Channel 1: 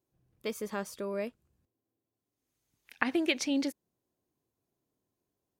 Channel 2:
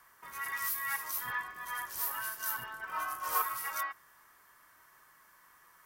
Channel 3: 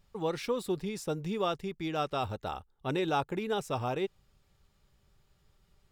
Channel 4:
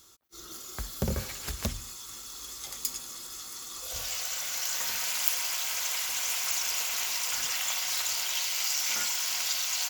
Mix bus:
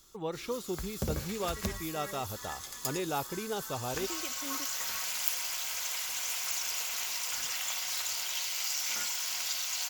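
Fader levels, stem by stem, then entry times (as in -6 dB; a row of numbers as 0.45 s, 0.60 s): -14.5 dB, -11.0 dB, -4.0 dB, -4.0 dB; 0.95 s, 1.15 s, 0.00 s, 0.00 s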